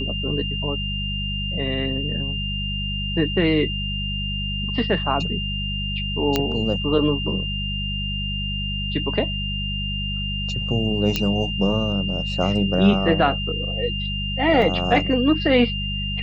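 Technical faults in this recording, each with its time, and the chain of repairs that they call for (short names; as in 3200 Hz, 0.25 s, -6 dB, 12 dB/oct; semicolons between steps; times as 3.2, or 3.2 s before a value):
hum 50 Hz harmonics 4 -28 dBFS
tone 2800 Hz -27 dBFS
6.36 pop -5 dBFS
11.16 pop -6 dBFS
14.62 gap 2.7 ms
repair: de-click; de-hum 50 Hz, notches 4; notch 2800 Hz, Q 30; interpolate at 14.62, 2.7 ms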